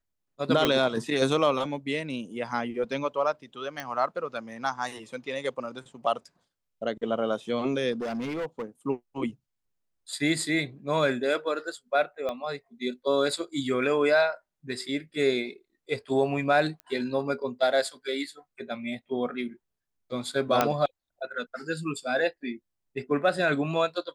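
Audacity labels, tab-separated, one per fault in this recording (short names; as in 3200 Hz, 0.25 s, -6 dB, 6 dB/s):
0.650000	0.650000	pop -8 dBFS
3.800000	3.800000	pop -19 dBFS
7.920000	8.640000	clipped -28.5 dBFS
12.290000	12.290000	pop -20 dBFS
16.800000	16.800000	pop -26 dBFS
20.610000	20.610000	pop -7 dBFS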